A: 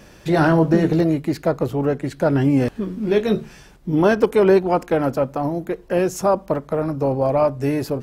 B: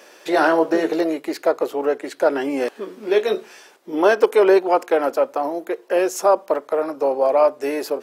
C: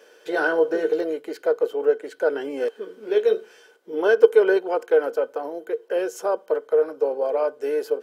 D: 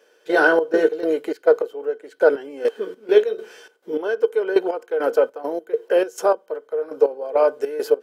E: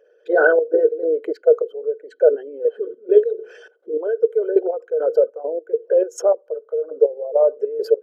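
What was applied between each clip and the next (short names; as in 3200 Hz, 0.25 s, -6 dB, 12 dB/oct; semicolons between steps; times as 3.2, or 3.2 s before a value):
HPF 370 Hz 24 dB/oct; gain +2.5 dB
small resonant body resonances 460/1500/3100 Hz, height 16 dB, ringing for 60 ms; gain -10.5 dB
step gate "..xx.x.xx.x....x" 102 bpm -12 dB; gain +6.5 dB
formant sharpening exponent 2; gain +1.5 dB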